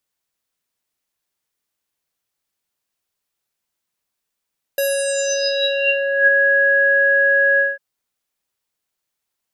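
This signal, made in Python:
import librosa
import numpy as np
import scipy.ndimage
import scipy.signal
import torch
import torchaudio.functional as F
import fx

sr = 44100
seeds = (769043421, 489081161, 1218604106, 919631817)

y = fx.sub_voice(sr, note=73, wave='square', cutoff_hz=1600.0, q=11.0, env_oct=3.0, env_s=1.51, attack_ms=2.8, decay_s=0.23, sustain_db=-3, release_s=0.19, note_s=2.81, slope=24)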